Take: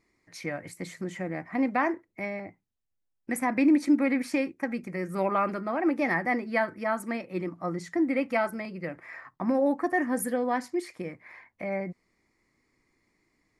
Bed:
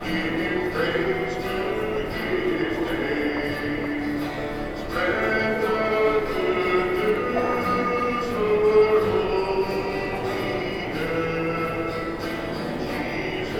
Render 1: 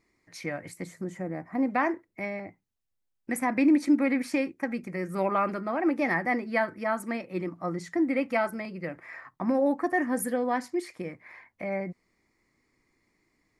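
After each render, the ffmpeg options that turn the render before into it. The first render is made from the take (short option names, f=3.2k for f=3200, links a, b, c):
-filter_complex "[0:a]asettb=1/sr,asplit=3[a][b][c];[a]atrim=end=0.844[d];[b]atrim=start=0.84:end=1.7,asetpts=PTS-STARTPTS,afade=t=in:d=0.004:c=qsin,afade=t=out:st=0.856:d=0.004:c=qsin,equalizer=f=3k:w=0.8:g=-11.5[e];[c]atrim=start=1.696[f];[d][e]acrossfade=d=0.004:c1=hsin:c2=qsin[g];[g][f]acrossfade=d=0.004:c1=qsin:c2=hsin"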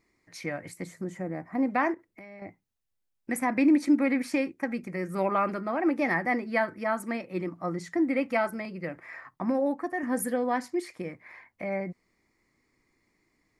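-filter_complex "[0:a]asettb=1/sr,asplit=3[a][b][c];[a]atrim=end=1.944[d];[b]atrim=start=1.94:end=2.42,asetpts=PTS-STARTPTS,afade=t=in:d=0.004:c=qsin,afade=t=out:st=0.476:d=0.004:c=qsin,acompressor=threshold=-43dB:ratio=8:attack=3.2:release=140:knee=1:detection=peak[e];[c]atrim=start=2.416[f];[d][e]acrossfade=d=0.004:c1=hsin:c2=qsin[g];[g][f]acrossfade=d=0.004:c1=qsin:c2=hsin,asplit=2[h][i];[h]atrim=end=10.03,asetpts=PTS-STARTPTS,afade=t=out:st=9.34:d=0.69:silence=0.446684[j];[i]atrim=start=10.03,asetpts=PTS-STARTPTS,afade=t=in:d=0.004:c=hsin:silence=0.446684[k];[j][k]concat=n=2:v=0:a=1"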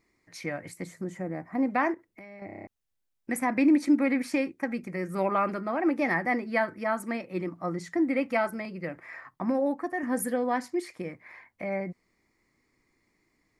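-filter_complex "[0:a]asplit=8[a][b][c][d][e][f][g][h];[a]atrim=end=2.492[i];[b]atrim=start=2.458:end=2.492[j];[c]atrim=start=2.458:end=2.492[k];[d]atrim=start=2.458:end=2.492[l];[e]atrim=start=2.458:end=2.492[m];[f]atrim=start=2.458:end=2.492[n];[g]atrim=start=2.458:end=2.492[o];[h]atrim=start=2.668[p];[i][j]acrossfade=d=0.004:c1=hsin:c2=hsin[q];[q][k]acrossfade=d=0.004:c1=hsin:c2=hsin[r];[r][l]acrossfade=d=0.004:c1=hsin:c2=hsin[s];[s][m]acrossfade=d=0.004:c1=hsin:c2=hsin[t];[t][n]acrossfade=d=0.004:c1=hsin:c2=hsin[u];[u][o]acrossfade=d=0.004:c1=hsin:c2=hsin[v];[v][p]acrossfade=d=0.004:c1=hsin:c2=hsin"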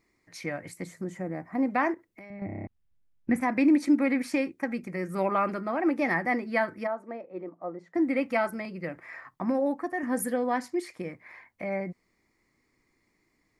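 -filter_complex "[0:a]asettb=1/sr,asplit=3[a][b][c];[a]atrim=end=2.304[d];[b]atrim=start=2.3:end=3.41,asetpts=PTS-STARTPTS,afade=t=in:d=0.004:c=qsin,afade=t=out:st=1.106:d=0.004:c=qsin,bass=f=250:g=14,treble=f=4k:g=-12[e];[c]atrim=start=3.406[f];[d][e]acrossfade=d=0.004:c1=hsin:c2=qsin[g];[g][f]acrossfade=d=0.004:c1=qsin:c2=hsin,asplit=3[h][i][j];[h]afade=t=out:st=6.86:d=0.02[k];[i]bandpass=f=570:t=q:w=1.6,afade=t=in:st=6.86:d=0.02,afade=t=out:st=7.94:d=0.02[l];[j]afade=t=in:st=7.94:d=0.02[m];[k][l][m]amix=inputs=3:normalize=0"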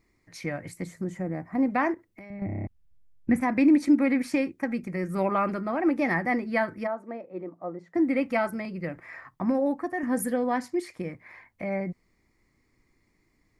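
-af "lowshelf=f=140:g=11"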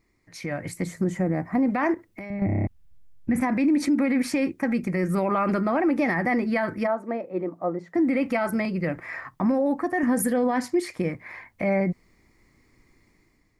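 -af "alimiter=limit=-23.5dB:level=0:latency=1:release=49,dynaudnorm=f=220:g=5:m=8dB"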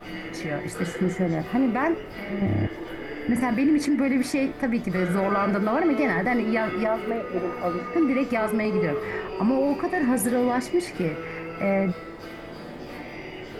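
-filter_complex "[1:a]volume=-10dB[a];[0:a][a]amix=inputs=2:normalize=0"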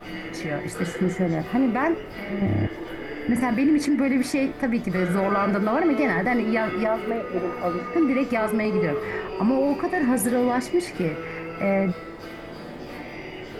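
-af "volume=1dB"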